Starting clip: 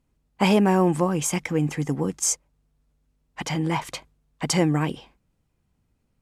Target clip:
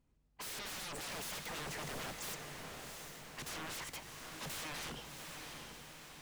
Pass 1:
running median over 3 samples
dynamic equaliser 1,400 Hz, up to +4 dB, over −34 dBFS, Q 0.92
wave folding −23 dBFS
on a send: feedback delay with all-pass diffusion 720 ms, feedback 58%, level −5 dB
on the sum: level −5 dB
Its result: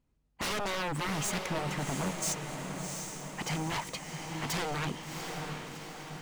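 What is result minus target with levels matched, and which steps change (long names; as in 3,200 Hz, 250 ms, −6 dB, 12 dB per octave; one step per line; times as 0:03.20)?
wave folding: distortion −17 dB
change: wave folding −34.5 dBFS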